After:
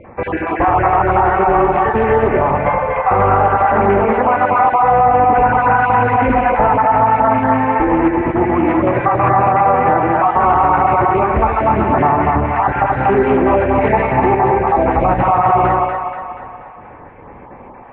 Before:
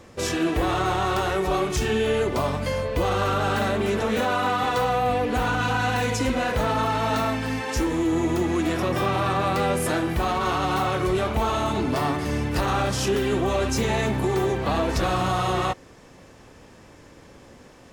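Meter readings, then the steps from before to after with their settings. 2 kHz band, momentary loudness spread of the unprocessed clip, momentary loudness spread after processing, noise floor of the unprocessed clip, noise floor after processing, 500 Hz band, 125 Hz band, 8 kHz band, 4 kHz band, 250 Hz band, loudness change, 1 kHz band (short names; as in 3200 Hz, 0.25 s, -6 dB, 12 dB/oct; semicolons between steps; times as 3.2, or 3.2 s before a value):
+8.0 dB, 2 LU, 4 LU, -49 dBFS, -37 dBFS, +9.5 dB, +6.0 dB, under -40 dB, under -10 dB, +7.5 dB, +10.5 dB, +14.5 dB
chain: random spectral dropouts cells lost 33%; elliptic low-pass 2300 Hz, stop band 60 dB; bell 850 Hz +10.5 dB 0.71 oct; split-band echo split 590 Hz, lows 80 ms, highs 0.24 s, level -3 dB; maximiser +10.5 dB; Doppler distortion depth 0.18 ms; gain -2.5 dB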